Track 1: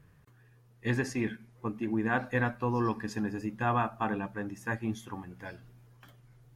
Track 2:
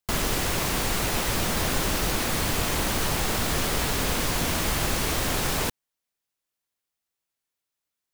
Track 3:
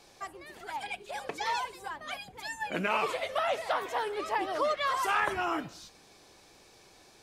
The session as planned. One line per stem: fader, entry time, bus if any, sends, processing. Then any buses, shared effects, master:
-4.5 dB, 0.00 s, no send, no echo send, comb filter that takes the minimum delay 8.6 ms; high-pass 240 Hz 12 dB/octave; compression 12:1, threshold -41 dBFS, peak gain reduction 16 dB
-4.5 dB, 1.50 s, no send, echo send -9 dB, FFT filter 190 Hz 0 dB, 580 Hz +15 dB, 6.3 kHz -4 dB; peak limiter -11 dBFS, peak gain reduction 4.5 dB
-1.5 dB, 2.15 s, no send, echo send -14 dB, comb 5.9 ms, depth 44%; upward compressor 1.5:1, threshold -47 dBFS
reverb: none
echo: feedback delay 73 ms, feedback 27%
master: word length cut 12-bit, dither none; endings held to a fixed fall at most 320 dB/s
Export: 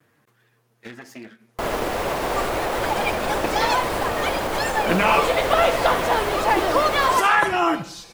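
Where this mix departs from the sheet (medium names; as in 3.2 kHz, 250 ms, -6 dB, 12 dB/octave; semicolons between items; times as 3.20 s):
stem 1 -4.5 dB -> +5.5 dB; stem 3 -1.5 dB -> +10.0 dB; master: missing word length cut 12-bit, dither none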